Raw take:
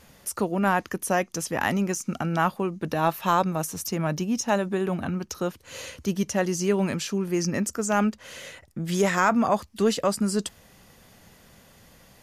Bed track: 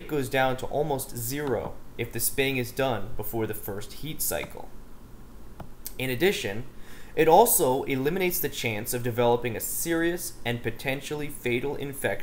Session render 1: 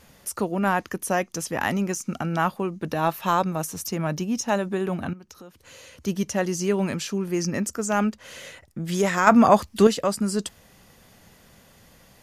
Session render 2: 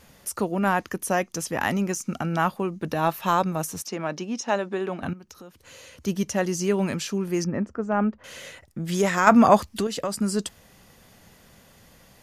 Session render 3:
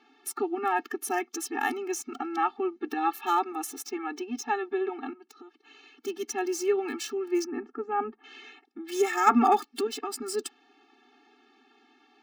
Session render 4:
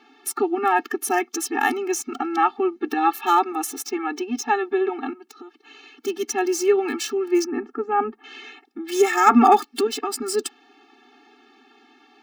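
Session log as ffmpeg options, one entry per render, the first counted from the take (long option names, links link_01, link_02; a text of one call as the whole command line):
ffmpeg -i in.wav -filter_complex "[0:a]asettb=1/sr,asplit=3[link_01][link_02][link_03];[link_01]atrim=end=5.134[link_04];[link_02]atrim=start=5.13:end=6.05,asetpts=PTS-STARTPTS,afade=type=in:duration=0.004:curve=qsin,afade=type=out:start_time=0.916:duration=0.004:curve=qsin,acompressor=threshold=-44dB:ratio=4:attack=3.2:release=140:knee=1:detection=peak[link_05];[link_03]atrim=start=6.046[link_06];[link_04][link_05]acrossfade=duration=0.004:curve1=hsin:curve2=qsin[link_07];[link_07][link_06]acrossfade=duration=0.004:curve1=qsin:curve2=hsin,asplit=3[link_08][link_09][link_10];[link_08]atrim=end=9.272[link_11];[link_09]atrim=start=9.268:end=9.872,asetpts=PTS-STARTPTS,volume=7dB[link_12];[link_10]atrim=start=9.868[link_13];[link_11][link_12]acrossfade=duration=0.004:curve1=hsin:curve2=hsin[link_14];[link_14][link_13]acrossfade=duration=0.004:curve1=hsin:curve2=hsin" out.wav
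ffmpeg -i in.wav -filter_complex "[0:a]asettb=1/sr,asplit=3[link_01][link_02][link_03];[link_01]atrim=end=3.824[link_04];[link_02]atrim=start=3.82:end=5.03,asetpts=PTS-STARTPTS,afade=type=in:duration=0.004:curve=qsin,afade=type=out:start_time=1.206:duration=0.004:curve=qsin,highpass=270,lowpass=5700[link_05];[link_03]atrim=start=5.026[link_06];[link_04][link_05]acrossfade=duration=0.004:curve1=hsin:curve2=qsin[link_07];[link_07][link_06]acrossfade=duration=0.004:curve1=qsin:curve2=hsin,asettb=1/sr,asplit=3[link_08][link_09][link_10];[link_08]atrim=end=7.444[link_11];[link_09]atrim=start=7.44:end=8.24,asetpts=PTS-STARTPTS,afade=type=in:duration=0.004:curve=qsin,afade=type=out:start_time=0.796:duration=0.004:curve=qsin,lowpass=1400[link_12];[link_10]atrim=start=8.236[link_13];[link_11][link_12]acrossfade=duration=0.004:curve1=hsin:curve2=qsin[link_14];[link_14][link_13]acrossfade=duration=0.004:curve1=qsin:curve2=hsin,asettb=1/sr,asplit=3[link_15][link_16][link_17];[link_15]atrim=end=9.654[link_18];[link_16]atrim=start=9.65:end=10.18,asetpts=PTS-STARTPTS,afade=type=in:duration=0.004:curve=qsin,afade=type=out:start_time=0.526:duration=0.004:curve=qsin,acompressor=threshold=-23dB:ratio=4:attack=3.2:release=140:knee=1:detection=peak[link_19];[link_17]atrim=start=10.176[link_20];[link_18][link_19]acrossfade=duration=0.004:curve1=hsin:curve2=qsin[link_21];[link_21][link_20]acrossfade=duration=0.004:curve1=qsin:curve2=hsin" out.wav
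ffmpeg -i in.wav -filter_complex "[0:a]acrossover=split=180|4200[link_01][link_02][link_03];[link_03]aeval=exprs='val(0)*gte(abs(val(0)),0.015)':channel_layout=same[link_04];[link_01][link_02][link_04]amix=inputs=3:normalize=0,afftfilt=real='re*eq(mod(floor(b*sr/1024/230),2),1)':imag='im*eq(mod(floor(b*sr/1024/230),2),1)':win_size=1024:overlap=0.75" out.wav
ffmpeg -i in.wav -af "volume=7.5dB,alimiter=limit=-2dB:level=0:latency=1" out.wav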